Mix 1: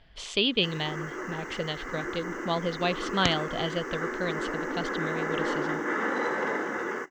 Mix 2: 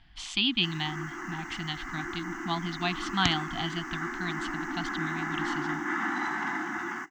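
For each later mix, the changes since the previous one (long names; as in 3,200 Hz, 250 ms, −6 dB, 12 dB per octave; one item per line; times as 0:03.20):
master: add elliptic band-stop filter 340–730 Hz, stop band 40 dB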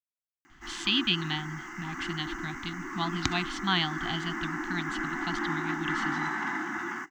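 speech: entry +0.50 s
master: add parametric band 720 Hz −3.5 dB 0.31 octaves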